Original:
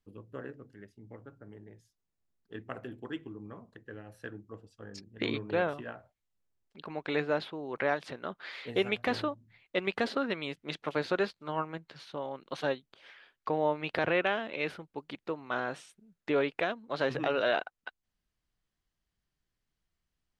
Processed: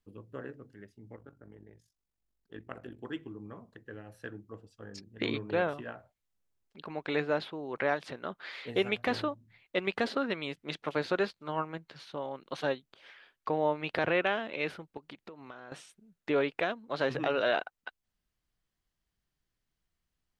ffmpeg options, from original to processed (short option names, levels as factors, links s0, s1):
-filter_complex "[0:a]asettb=1/sr,asplit=3[s0][s1][s2];[s0]atrim=end=1.164[s3];[s1]atrim=start=1.16:end=3,asetpts=PTS-STARTPTS,afade=t=in:d=0.004:c=qsin,afade=t=out:st=1.836:d=0.004:c=qsin,tremolo=f=47:d=0.71[s4];[s2]atrim=start=2.996[s5];[s3][s4]acrossfade=d=0.004:c1=hsin:c2=qsin[s6];[s6][s5]acrossfade=d=0.004:c1=qsin:c2=hsin,asettb=1/sr,asplit=3[s7][s8][s9];[s7]atrim=end=14.974[s10];[s8]atrim=start=14.97:end=15.72,asetpts=PTS-STARTPTS,afade=t=in:d=0.004:c=qsin,afade=t=out:st=0.746:d=0.004:c=qsin,acompressor=threshold=0.00794:ratio=20:attack=3.2:release=140:knee=1:detection=peak[s11];[s9]atrim=start=15.716[s12];[s10][s11]acrossfade=d=0.004:c1=hsin:c2=qsin[s13];[s13][s12]acrossfade=d=0.004:c1=qsin:c2=hsin"